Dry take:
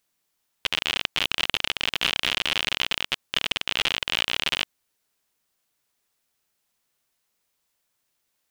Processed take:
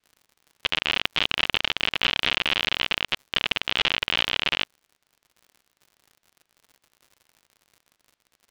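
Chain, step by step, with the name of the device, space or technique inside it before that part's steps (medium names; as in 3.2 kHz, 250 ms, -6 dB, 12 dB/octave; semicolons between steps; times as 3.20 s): lo-fi chain (low-pass 4.1 kHz 12 dB/octave; wow and flutter; crackle 89 per s -44 dBFS); trim +2 dB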